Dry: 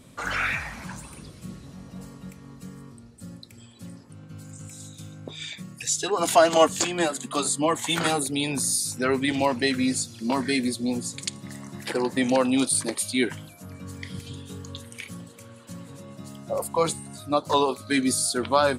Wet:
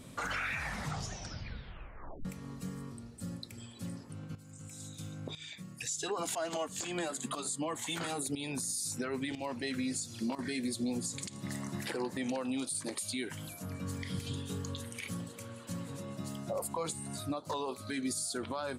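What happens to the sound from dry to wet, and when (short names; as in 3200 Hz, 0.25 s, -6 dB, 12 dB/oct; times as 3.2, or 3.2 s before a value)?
0.63 tape stop 1.62 s
4.35–10.39 tremolo saw up 1 Hz, depth 80%
13.17–13.59 high shelf 5100 Hz +6.5 dB
whole clip: dynamic EQ 7300 Hz, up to +4 dB, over -40 dBFS, Q 2.4; compressor 10:1, threshold -30 dBFS; limiter -26.5 dBFS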